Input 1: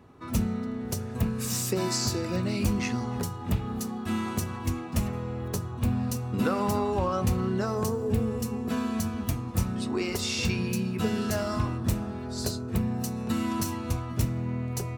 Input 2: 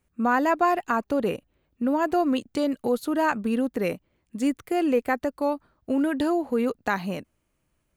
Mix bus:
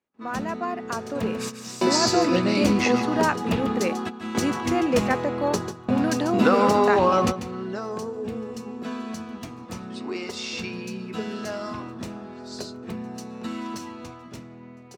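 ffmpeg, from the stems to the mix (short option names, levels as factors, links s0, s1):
-filter_complex "[0:a]volume=0.944,asplit=2[s0][s1];[s1]volume=0.299[s2];[1:a]lowshelf=f=200:g=-7,volume=0.355,asplit=2[s3][s4];[s4]apad=whole_len=660316[s5];[s0][s5]sidechaingate=range=0.0224:threshold=0.00158:ratio=16:detection=peak[s6];[s2]aecho=0:1:143:1[s7];[s6][s3][s7]amix=inputs=3:normalize=0,acrossover=split=180 6800:gain=0.1 1 0.141[s8][s9][s10];[s8][s9][s10]amix=inputs=3:normalize=0,dynaudnorm=f=560:g=5:m=3.16"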